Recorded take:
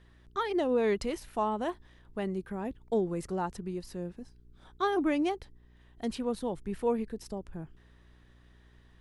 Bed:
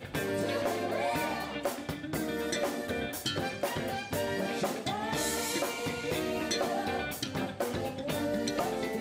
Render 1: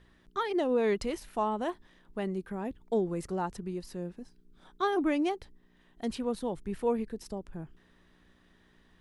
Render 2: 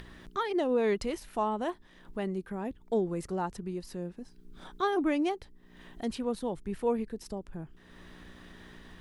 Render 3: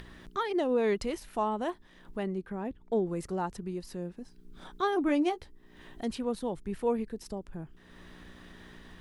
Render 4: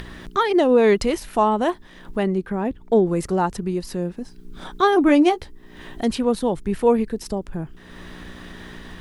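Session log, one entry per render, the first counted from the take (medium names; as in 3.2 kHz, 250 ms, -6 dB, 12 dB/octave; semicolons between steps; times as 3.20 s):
de-hum 60 Hz, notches 2
upward compressor, threshold -37 dBFS
2.22–3.05 s: treble shelf 6.6 kHz -> 4.4 kHz -10 dB; 5.07–6.01 s: doubling 14 ms -7.5 dB
trim +12 dB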